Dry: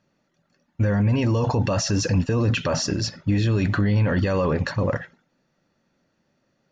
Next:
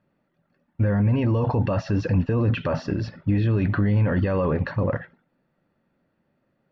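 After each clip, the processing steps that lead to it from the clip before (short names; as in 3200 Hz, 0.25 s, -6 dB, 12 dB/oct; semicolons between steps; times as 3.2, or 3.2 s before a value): air absorption 380 m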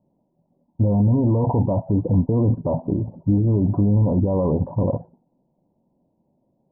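rippled Chebyshev low-pass 1000 Hz, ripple 3 dB; gain +4.5 dB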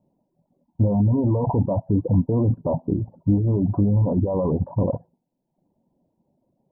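reverb removal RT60 0.71 s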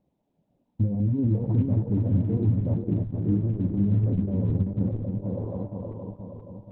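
regenerating reverse delay 0.237 s, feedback 76%, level -4.5 dB; treble ducked by the level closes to 320 Hz, closed at -18 dBFS; gain -4.5 dB; Opus 8 kbps 48000 Hz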